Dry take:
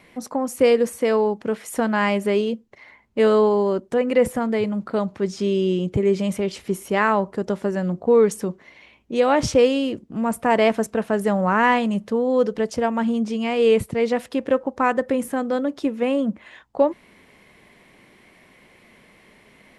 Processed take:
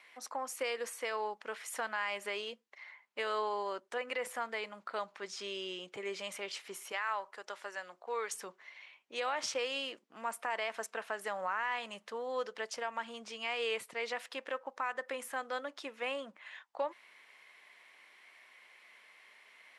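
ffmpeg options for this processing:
ffmpeg -i in.wav -filter_complex "[0:a]asettb=1/sr,asplit=3[link_01][link_02][link_03];[link_01]atrim=end=6.924[link_04];[link_02]atrim=start=6.92:end=8.33,asetpts=PTS-STARTPTS,afade=type=in:duration=0.004:curve=qsin,afade=type=out:start_time=1.406:duration=0.004:curve=qsin,highpass=frequency=740:poles=1[link_05];[link_03]atrim=start=8.326[link_06];[link_04][link_05]acrossfade=duration=0.004:curve1=hsin:curve2=qsin[link_07];[link_07][link_06]acrossfade=duration=0.004:curve1=qsin:curve2=hsin,highpass=1100,highshelf=frequency=9100:gain=-10.5,alimiter=limit=-21.5dB:level=0:latency=1:release=140,volume=-3.5dB" out.wav

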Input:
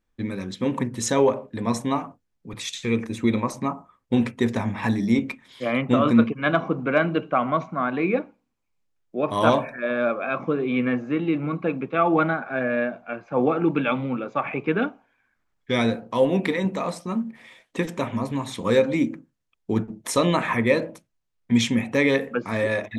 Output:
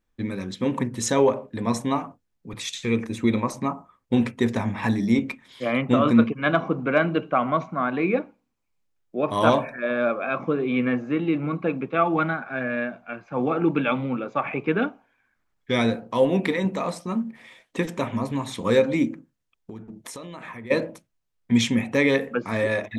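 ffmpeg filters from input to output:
ffmpeg -i in.wav -filter_complex "[0:a]asettb=1/sr,asplit=3[link_01][link_02][link_03];[link_01]atrim=end=12.044[link_04];[link_02]atrim=start=12.04:end=13.51,asetpts=PTS-STARTPTS,afade=type=in:duration=0.004:curve=qsin,afade=type=out:start_time=1.466:duration=0.004:curve=qsin,equalizer=frequency=510:width=0.85:gain=-5.5[link_05];[link_03]atrim=start=13.506[link_06];[link_04][link_05]acrossfade=duration=0.004:curve1=hsin:curve2=qsin[link_07];[link_07][link_06]acrossfade=duration=0.004:curve1=qsin:curve2=hsin,asplit=3[link_08][link_09][link_10];[link_08]afade=type=out:start_time=19.13:duration=0.02[link_11];[link_09]acompressor=threshold=-35dB:ratio=8:attack=3.2:release=140:knee=1:detection=peak,afade=type=in:start_time=19.13:duration=0.02,afade=type=out:start_time=20.7:duration=0.02[link_12];[link_10]afade=type=in:start_time=20.7:duration=0.02[link_13];[link_11][link_12][link_13]amix=inputs=3:normalize=0" out.wav

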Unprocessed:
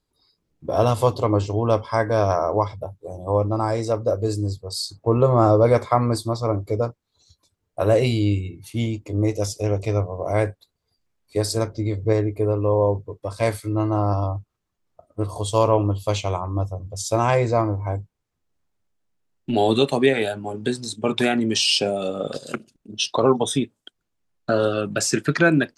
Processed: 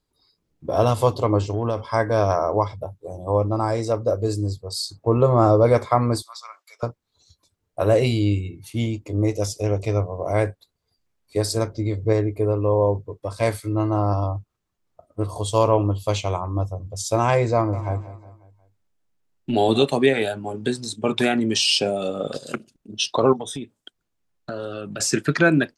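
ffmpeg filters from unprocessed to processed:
ffmpeg -i in.wav -filter_complex "[0:a]asettb=1/sr,asplit=3[link_01][link_02][link_03];[link_01]atrim=end=1.454[link_04];[link_02]atrim=start=1.45:end=1.88,asetpts=PTS-STARTPTS,afade=type=in:duration=0.004:curve=qsin,afade=type=out:start_time=0.426:duration=0.004:curve=qsin,acompressor=threshold=-18dB:ratio=6:attack=3.2:release=140:knee=1:detection=peak[link_05];[link_03]atrim=start=1.876[link_06];[link_04][link_05]acrossfade=duration=0.004:curve1=hsin:curve2=qsin[link_07];[link_07][link_06]acrossfade=duration=0.004:curve1=qsin:curve2=hsin,asettb=1/sr,asplit=3[link_08][link_09][link_10];[link_08]atrim=end=6.224[link_11];[link_09]atrim=start=6.22:end=6.83,asetpts=PTS-STARTPTS,afade=type=in:duration=0.004:curve=qsin,afade=type=out:start_time=0.606:duration=0.004:curve=qsin,highpass=frequency=1400:width=0.5412,highpass=frequency=1400:width=1.3066[link_12];[link_10]atrim=start=6.826[link_13];[link_11][link_12]acrossfade=duration=0.004:curve1=hsin:curve2=qsin[link_14];[link_14][link_13]acrossfade=duration=0.004:curve1=qsin:curve2=hsin,asplit=3[link_15][link_16][link_17];[link_15]afade=type=out:start_time=17.72:duration=0.02[link_18];[link_16]aecho=1:1:181|362|543|724:0.168|0.0789|0.0371|0.0174,afade=type=in:start_time=17.72:duration=0.02,afade=type=out:start_time=19.84:duration=0.02[link_19];[link_17]afade=type=in:start_time=19.84:duration=0.02[link_20];[link_18][link_19][link_20]amix=inputs=3:normalize=0,asettb=1/sr,asplit=3[link_21][link_22][link_23];[link_21]atrim=end=23.334[link_24];[link_22]atrim=start=23.33:end=25,asetpts=PTS-STARTPTS,afade=type=in:duration=0.004:curve=qsin,afade=type=out:start_time=1.666:duration=0.004:curve=qsin,acompressor=threshold=-30dB:ratio=3:attack=3.2:release=140:knee=1:detection=peak[link_25];[link_23]atrim=start=24.996[link_26];[link_24][link_25]acrossfade=duration=0.004:curve1=hsin:curve2=qsin[link_27];[link_27][link_26]acrossfade=duration=0.004:curve1=qsin:curve2=hsin" out.wav

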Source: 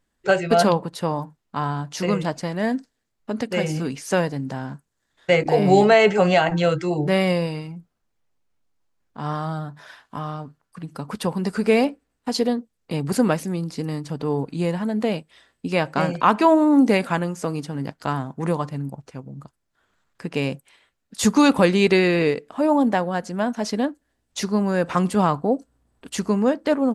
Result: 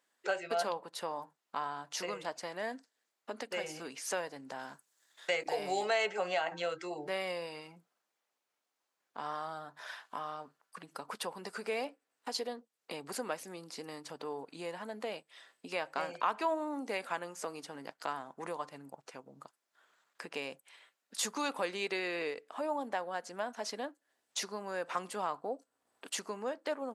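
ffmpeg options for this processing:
ffmpeg -i in.wav -filter_complex "[0:a]asettb=1/sr,asplit=3[link_01][link_02][link_03];[link_01]atrim=end=4.594[link_04];[link_02]atrim=start=4.59:end=6.07,asetpts=PTS-STARTPTS,afade=type=in:duration=0.004:curve=qsin,afade=type=out:start_time=1.476:duration=0.004:curve=qsin,highshelf=frequency=3200:gain=9[link_05];[link_03]atrim=start=6.066[link_06];[link_04][link_05]acrossfade=duration=0.004:curve1=hsin:curve2=qsin[link_07];[link_07][link_06]acrossfade=duration=0.004:curve1=qsin:curve2=hsin,acompressor=threshold=-39dB:ratio=2,highpass=530" out.wav

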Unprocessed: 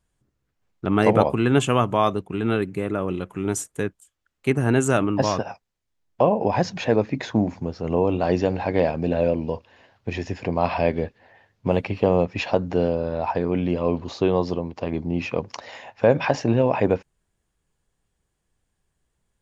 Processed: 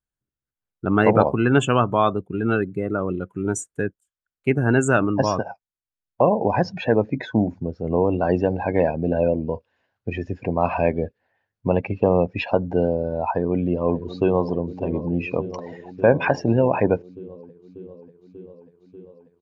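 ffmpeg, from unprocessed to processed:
ffmpeg -i in.wav -filter_complex "[0:a]asplit=2[link_01][link_02];[link_02]afade=type=in:start_time=13.3:duration=0.01,afade=type=out:start_time=14.46:duration=0.01,aecho=0:1:590|1180|1770|2360|2950|3540|4130|4720|5310|5900|6490|7080:0.237137|0.201567|0.171332|0.145632|0.123787|0.105219|0.0894362|0.0760208|0.0646177|0.054925|0.0466863|0.0396833[link_03];[link_01][link_03]amix=inputs=2:normalize=0,afftdn=noise_reduction=19:noise_floor=-31,equalizer=frequency=1500:width=5.4:gain=6.5,volume=1dB" out.wav

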